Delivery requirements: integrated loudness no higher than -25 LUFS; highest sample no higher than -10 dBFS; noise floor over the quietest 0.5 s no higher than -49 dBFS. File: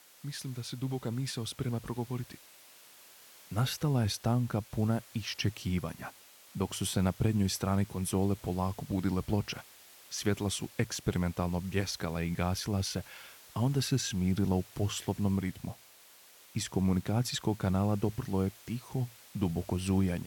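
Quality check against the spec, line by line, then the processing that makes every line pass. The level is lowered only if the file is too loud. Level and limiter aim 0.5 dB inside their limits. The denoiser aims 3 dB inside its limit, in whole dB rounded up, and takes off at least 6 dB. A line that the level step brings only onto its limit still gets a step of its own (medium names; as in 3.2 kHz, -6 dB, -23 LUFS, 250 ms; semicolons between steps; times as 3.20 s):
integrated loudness -33.0 LUFS: pass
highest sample -15.5 dBFS: pass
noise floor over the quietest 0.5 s -57 dBFS: pass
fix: none needed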